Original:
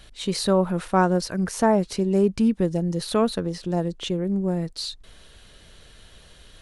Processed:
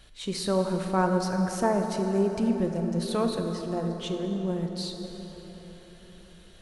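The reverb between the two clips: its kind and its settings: plate-style reverb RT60 4.8 s, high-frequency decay 0.5×, DRR 3.5 dB; trim -6 dB

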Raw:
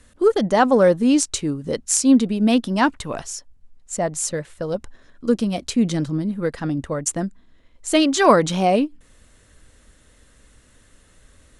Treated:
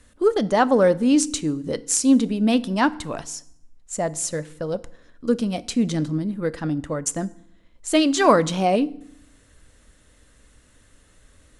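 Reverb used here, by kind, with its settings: FDN reverb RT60 0.7 s, low-frequency decay 1.35×, high-frequency decay 0.85×, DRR 16 dB; trim -2 dB

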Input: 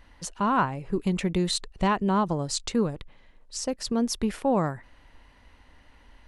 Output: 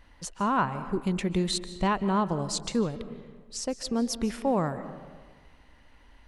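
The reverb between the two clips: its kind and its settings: algorithmic reverb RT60 1.5 s, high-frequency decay 0.5×, pre-delay 110 ms, DRR 12.5 dB; trim -2 dB

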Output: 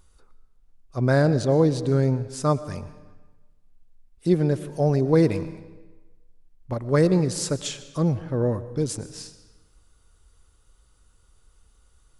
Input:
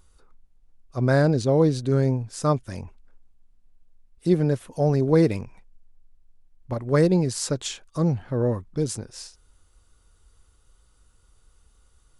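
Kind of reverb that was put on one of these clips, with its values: algorithmic reverb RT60 1.2 s, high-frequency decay 0.85×, pre-delay 75 ms, DRR 14 dB

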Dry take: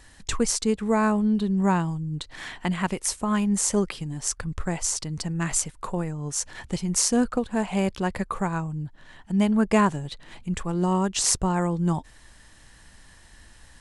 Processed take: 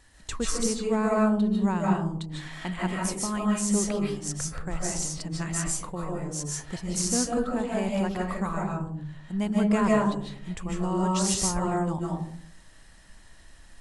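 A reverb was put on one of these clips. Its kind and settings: algorithmic reverb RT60 0.62 s, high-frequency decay 0.3×, pre-delay 110 ms, DRR -3 dB; trim -7 dB

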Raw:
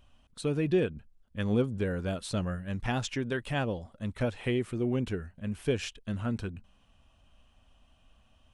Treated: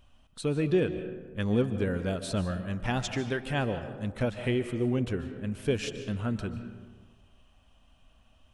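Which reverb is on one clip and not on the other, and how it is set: algorithmic reverb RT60 1.4 s, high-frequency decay 0.45×, pre-delay 105 ms, DRR 9.5 dB; trim +1 dB

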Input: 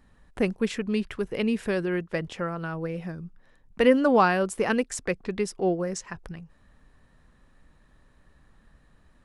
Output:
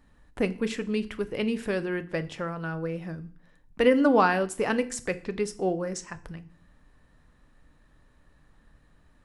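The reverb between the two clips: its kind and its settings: FDN reverb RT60 0.45 s, low-frequency decay 1.55×, high-frequency decay 1×, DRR 10.5 dB; trim -1.5 dB

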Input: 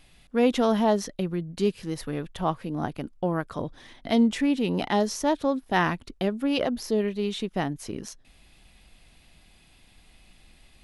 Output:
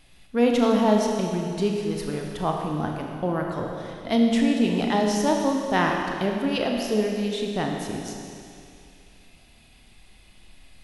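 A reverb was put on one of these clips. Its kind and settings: Schroeder reverb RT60 2.5 s, combs from 26 ms, DRR 1 dB

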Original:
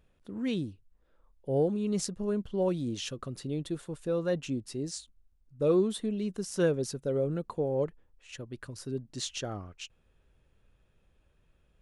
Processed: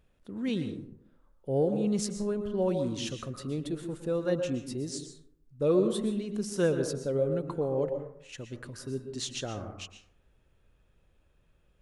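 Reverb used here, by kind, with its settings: plate-style reverb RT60 0.7 s, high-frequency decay 0.4×, pre-delay 105 ms, DRR 7 dB

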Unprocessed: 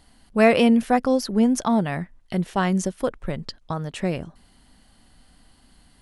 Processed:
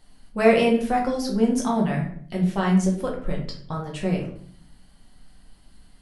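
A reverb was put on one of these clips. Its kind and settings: simulated room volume 67 m³, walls mixed, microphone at 0.89 m; trim -5.5 dB

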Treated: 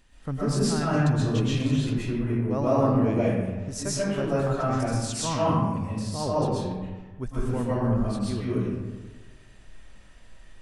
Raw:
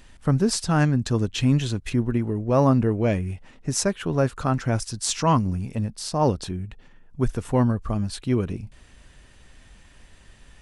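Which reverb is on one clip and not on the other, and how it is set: algorithmic reverb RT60 1.3 s, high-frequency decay 0.5×, pre-delay 90 ms, DRR -8.5 dB; trim -11 dB

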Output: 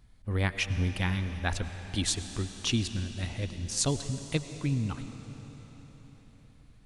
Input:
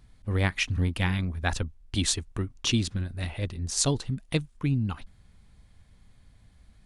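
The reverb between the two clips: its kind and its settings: algorithmic reverb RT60 4.8 s, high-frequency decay 0.95×, pre-delay 60 ms, DRR 9.5 dB; trim -3 dB

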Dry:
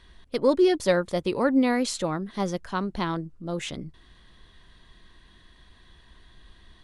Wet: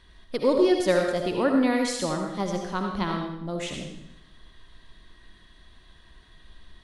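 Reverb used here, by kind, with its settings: algorithmic reverb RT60 0.76 s, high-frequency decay 1×, pre-delay 35 ms, DRR 2 dB; trim -1.5 dB

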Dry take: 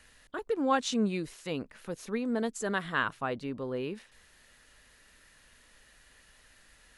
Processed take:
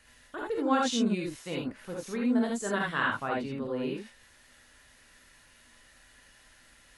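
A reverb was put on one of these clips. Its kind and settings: gated-style reverb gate 100 ms rising, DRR -2.5 dB; trim -2.5 dB

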